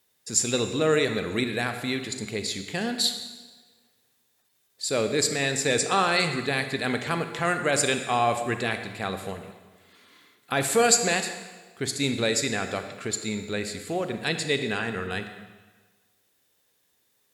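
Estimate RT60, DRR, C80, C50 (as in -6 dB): 1.4 s, 7.5 dB, 9.5 dB, 8.0 dB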